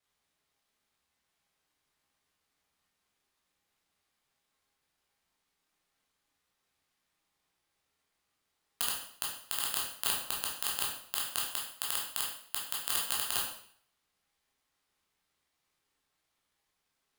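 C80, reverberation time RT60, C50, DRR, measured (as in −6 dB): 7.5 dB, 0.60 s, 3.5 dB, −4.5 dB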